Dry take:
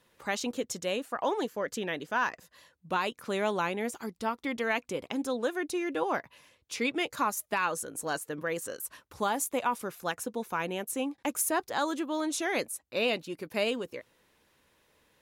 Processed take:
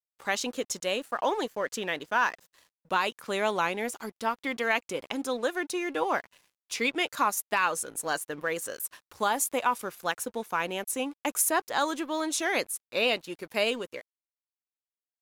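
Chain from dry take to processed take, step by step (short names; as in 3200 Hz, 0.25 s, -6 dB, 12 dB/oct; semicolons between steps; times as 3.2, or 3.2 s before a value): low shelf 360 Hz -8 dB; crossover distortion -56.5 dBFS; wow and flutter 23 cents; gain +4.5 dB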